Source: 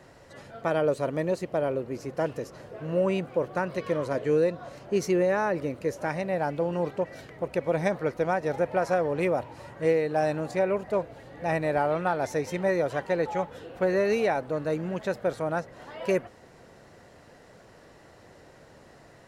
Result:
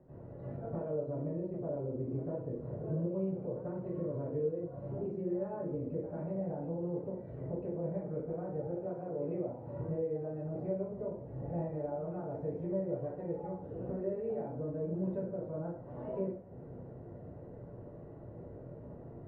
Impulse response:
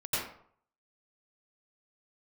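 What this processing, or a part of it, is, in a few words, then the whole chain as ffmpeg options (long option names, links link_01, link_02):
television next door: -filter_complex "[0:a]asettb=1/sr,asplit=3[link_01][link_02][link_03];[link_01]atrim=end=8.714[link_04];[link_02]atrim=start=8.71:end=9.7,asetpts=PTS-STARTPTS,afade=type=in:duration=0.004:curve=qsin,afade=type=out:start_time=0.986:duration=0.004:curve=qsin,highpass=120[link_05];[link_03]atrim=start=9.696[link_06];[link_04][link_05]acrossfade=duration=0.004:curve1=hsin:curve2=qsin[link_07];[link_07][link_06]acrossfade=duration=0.004:curve1=qsin:curve2=hsin,acompressor=threshold=-39dB:ratio=6,lowpass=440[link_08];[1:a]atrim=start_sample=2205[link_09];[link_08][link_09]afir=irnorm=-1:irlink=0"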